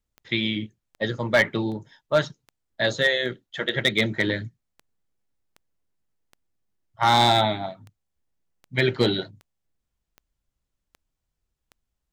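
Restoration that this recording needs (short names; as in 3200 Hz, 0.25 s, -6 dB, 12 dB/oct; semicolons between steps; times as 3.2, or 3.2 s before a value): clip repair -10.5 dBFS; de-click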